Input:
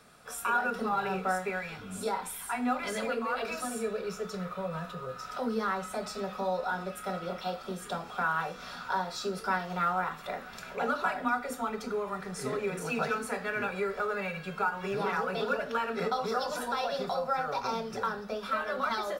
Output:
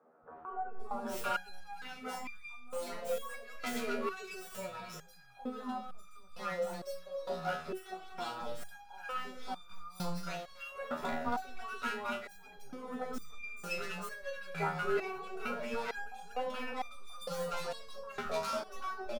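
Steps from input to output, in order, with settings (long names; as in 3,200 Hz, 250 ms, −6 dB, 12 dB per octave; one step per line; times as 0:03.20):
stylus tracing distortion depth 0.13 ms
three-band delay without the direct sound mids, lows, highs 220/790 ms, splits 240/1,100 Hz
step-sequenced resonator 2.2 Hz 80–1,200 Hz
level +7.5 dB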